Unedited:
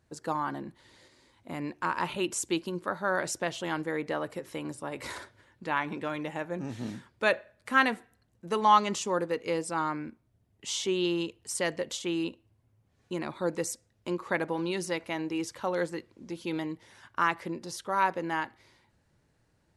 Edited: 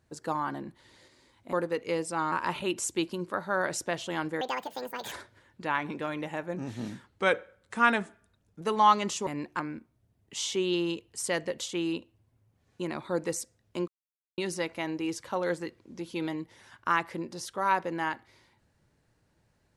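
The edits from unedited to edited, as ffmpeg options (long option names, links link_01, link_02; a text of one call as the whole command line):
ffmpeg -i in.wav -filter_complex "[0:a]asplit=11[link_01][link_02][link_03][link_04][link_05][link_06][link_07][link_08][link_09][link_10][link_11];[link_01]atrim=end=1.532[link_12];[link_02]atrim=start=9.118:end=9.912[link_13];[link_03]atrim=start=1.858:end=3.954[link_14];[link_04]atrim=start=3.95:end=5.14,asetpts=PTS-STARTPTS,asetrate=74088,aresample=44100[link_15];[link_05]atrim=start=5.136:end=7.094[link_16];[link_06]atrim=start=7.09:end=8.46,asetpts=PTS-STARTPTS,asetrate=39249,aresample=44100,atrim=end_sample=67884,asetpts=PTS-STARTPTS[link_17];[link_07]atrim=start=8.456:end=9.122[link_18];[link_08]atrim=start=1.528:end=1.862[link_19];[link_09]atrim=start=9.908:end=14.19,asetpts=PTS-STARTPTS,afade=type=out:start_time=4.278:duration=0.004:curve=hsin[link_20];[link_10]atrim=start=14.19:end=14.69,asetpts=PTS-STARTPTS,volume=0[link_21];[link_11]atrim=start=14.69,asetpts=PTS-STARTPTS,afade=type=in:duration=0.004:curve=hsin[link_22];[link_12][link_13]acrossfade=duration=0.004:curve1=hsin:curve2=hsin[link_23];[link_23][link_14]acrossfade=duration=0.004:curve1=hsin:curve2=hsin[link_24];[link_24][link_15]acrossfade=duration=0.004:curve1=hsin:curve2=hsin[link_25];[link_25][link_16]acrossfade=duration=0.004:curve1=hsin:curve2=hsin[link_26];[link_26][link_17]acrossfade=duration=0.004:curve1=hsin:curve2=hsin[link_27];[link_27][link_18]acrossfade=duration=0.004:curve1=hsin:curve2=hsin[link_28];[link_28][link_19]acrossfade=duration=0.004:curve1=hsin:curve2=hsin[link_29];[link_20][link_21][link_22]concat=n=3:v=0:a=1[link_30];[link_29][link_30]acrossfade=duration=0.004:curve1=hsin:curve2=hsin" out.wav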